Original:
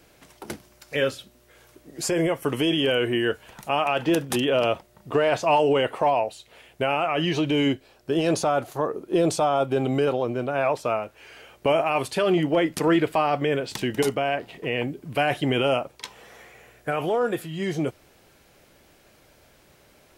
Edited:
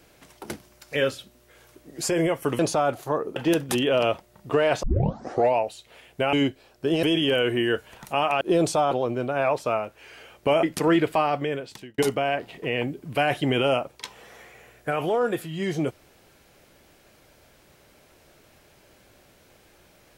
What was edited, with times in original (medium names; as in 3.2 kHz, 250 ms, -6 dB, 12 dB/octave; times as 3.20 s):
2.59–3.97 s: swap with 8.28–9.05 s
5.44 s: tape start 0.75 s
6.94–7.58 s: delete
9.55–10.10 s: delete
11.82–12.63 s: delete
13.20–13.98 s: fade out